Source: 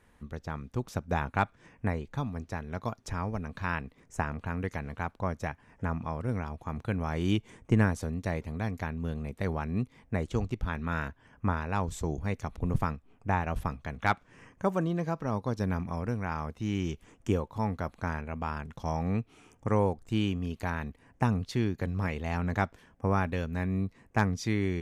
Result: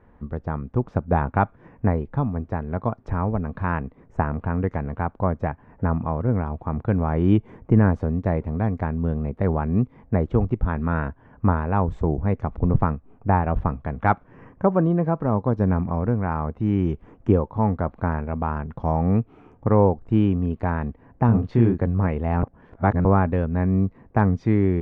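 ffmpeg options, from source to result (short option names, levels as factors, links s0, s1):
-filter_complex "[0:a]asettb=1/sr,asplit=3[s0][s1][s2];[s0]atrim=end=21.264[s3];[s1]atrim=start=21.26:end=21.78,asetpts=PTS-STARTPTS,afade=t=in:d=0.004:c=qsin,afade=t=out:st=0.516:d=0.004:c=qsin,asplit=2[s4][s5];[s5]adelay=26,volume=0.708[s6];[s4][s6]amix=inputs=2:normalize=0,atrim=end_sample=22932[s7];[s2]atrim=start=21.776[s8];[s3][s7]acrossfade=d=0.004:c1=hsin:c2=qsin[s9];[s9][s8]acrossfade=d=0.004:c1=qsin:c2=hsin,asplit=3[s10][s11][s12];[s10]atrim=end=22.432[s13];[s11]atrim=start=22.428:end=23.052,asetpts=PTS-STARTPTS,areverse[s14];[s12]atrim=start=23.048[s15];[s13][s14]acrossfade=d=0.004:c1=hsin:c2=hsin[s16];[s16][s15]acrossfade=d=0.004:c1=hsin:c2=hsin,lowpass=1100,alimiter=level_in=5.96:limit=0.891:release=50:level=0:latency=1,volume=0.531"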